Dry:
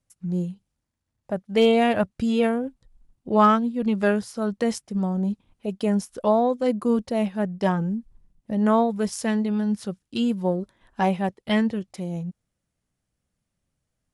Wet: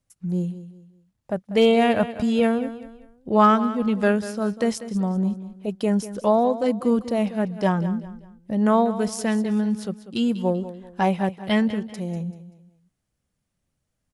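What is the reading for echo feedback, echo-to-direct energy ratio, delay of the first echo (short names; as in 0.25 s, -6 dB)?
34%, -13.5 dB, 0.193 s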